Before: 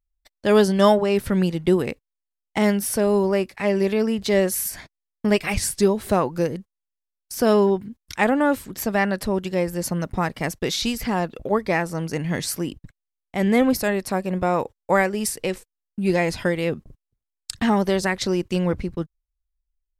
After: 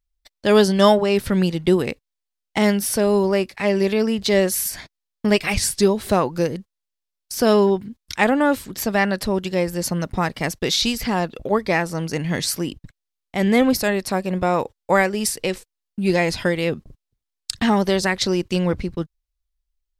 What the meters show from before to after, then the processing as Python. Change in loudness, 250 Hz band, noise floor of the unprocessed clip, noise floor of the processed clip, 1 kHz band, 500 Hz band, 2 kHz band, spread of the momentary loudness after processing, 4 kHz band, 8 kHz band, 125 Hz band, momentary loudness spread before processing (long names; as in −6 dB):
+2.0 dB, +1.5 dB, −84 dBFS, −83 dBFS, +1.5 dB, +1.5 dB, +2.5 dB, 10 LU, +5.5 dB, +3.0 dB, +1.5 dB, 10 LU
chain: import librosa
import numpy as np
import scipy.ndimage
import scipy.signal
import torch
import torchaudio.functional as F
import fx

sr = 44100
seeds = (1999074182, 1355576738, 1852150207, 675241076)

y = fx.peak_eq(x, sr, hz=4200.0, db=5.0, octaves=1.3)
y = y * 10.0 ** (1.5 / 20.0)